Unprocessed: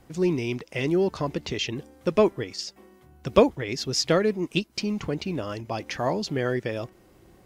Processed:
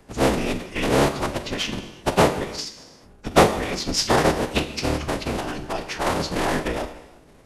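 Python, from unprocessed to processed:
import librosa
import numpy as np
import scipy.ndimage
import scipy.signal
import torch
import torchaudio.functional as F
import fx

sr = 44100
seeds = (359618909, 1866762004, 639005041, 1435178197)

y = fx.cycle_switch(x, sr, every=3, mode='inverted')
y = fx.room_early_taps(y, sr, ms=(23, 45), db=(-17.5, -15.5))
y = fx.rev_gated(y, sr, seeds[0], gate_ms=400, shape='falling', drr_db=8.5)
y = fx.pitch_keep_formants(y, sr, semitones=-10.5)
y = y * librosa.db_to_amplitude(4.0)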